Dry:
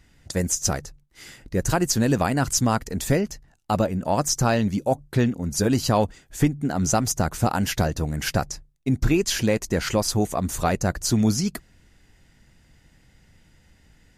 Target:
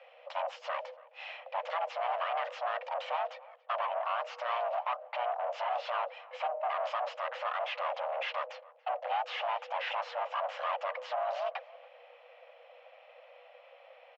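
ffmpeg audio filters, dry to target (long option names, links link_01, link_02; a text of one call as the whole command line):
ffmpeg -i in.wav -filter_complex "[0:a]alimiter=limit=-17dB:level=0:latency=1:release=118,aresample=16000,asoftclip=type=tanh:threshold=-34dB,aresample=44100,asplit=2[link_01][link_02];[link_02]asetrate=33038,aresample=44100,atempo=1.33484,volume=-4dB[link_03];[link_01][link_03]amix=inputs=2:normalize=0,afreqshift=480,highpass=460,equalizer=frequency=470:width_type=q:width=4:gain=-5,equalizer=frequency=780:width_type=q:width=4:gain=5,equalizer=frequency=1200:width_type=q:width=4:gain=4,equalizer=frequency=2900:width_type=q:width=4:gain=7,lowpass=frequency=3000:width=0.5412,lowpass=frequency=3000:width=1.3066,asplit=2[link_04][link_05];[link_05]adelay=282,lowpass=frequency=2200:poles=1,volume=-21dB,asplit=2[link_06][link_07];[link_07]adelay=282,lowpass=frequency=2200:poles=1,volume=0.37,asplit=2[link_08][link_09];[link_09]adelay=282,lowpass=frequency=2200:poles=1,volume=0.37[link_10];[link_04][link_06][link_08][link_10]amix=inputs=4:normalize=0" out.wav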